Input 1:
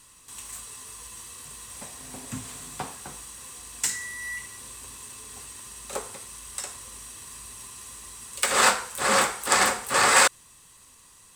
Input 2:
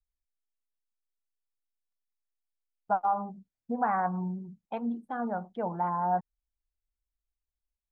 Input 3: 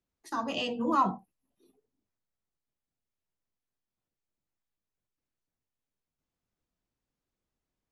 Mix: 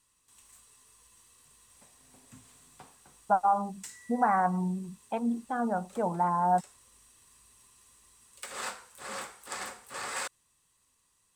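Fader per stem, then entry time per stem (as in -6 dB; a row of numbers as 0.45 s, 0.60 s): -18.0 dB, +2.5 dB, mute; 0.00 s, 0.40 s, mute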